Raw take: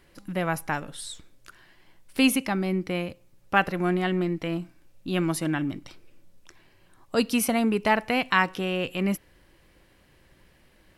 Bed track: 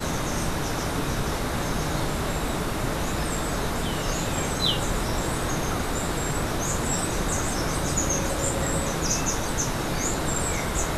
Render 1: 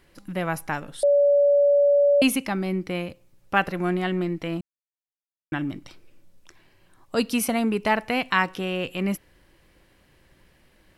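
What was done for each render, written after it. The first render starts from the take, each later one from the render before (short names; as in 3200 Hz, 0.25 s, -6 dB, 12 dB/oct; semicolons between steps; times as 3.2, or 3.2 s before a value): 1.03–2.22 bleep 572 Hz -14.5 dBFS; 4.61–5.52 mute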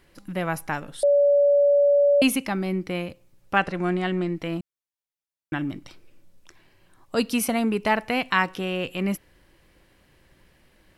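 3.56–4.35 steep low-pass 9900 Hz 48 dB/oct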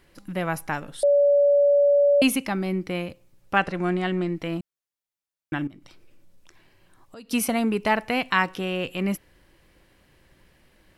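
5.67–7.31 compressor 3:1, threshold -47 dBFS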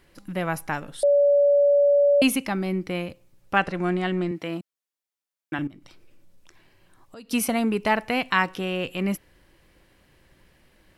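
4.31–5.59 Bessel high-pass 200 Hz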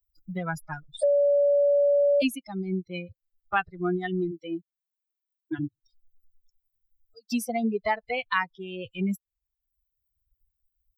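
per-bin expansion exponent 3; three-band squash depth 70%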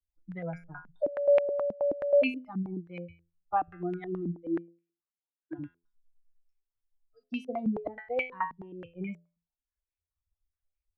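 resonator 85 Hz, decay 0.37 s, harmonics all, mix 80%; stepped low-pass 9.4 Hz 210–2400 Hz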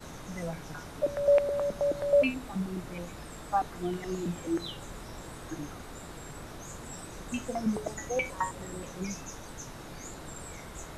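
add bed track -17 dB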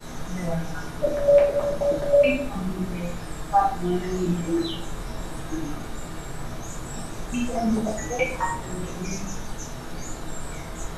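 shoebox room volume 56 m³, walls mixed, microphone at 1.3 m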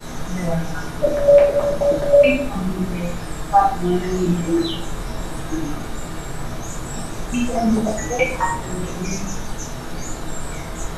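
gain +5.5 dB; limiter -3 dBFS, peak gain reduction 1 dB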